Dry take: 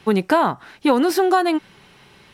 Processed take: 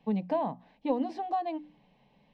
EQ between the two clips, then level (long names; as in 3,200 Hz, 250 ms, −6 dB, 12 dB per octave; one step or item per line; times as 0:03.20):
head-to-tape spacing loss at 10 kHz 38 dB
mains-hum notches 60/120/180/240/300 Hz
phaser with its sweep stopped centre 370 Hz, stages 6
−7.5 dB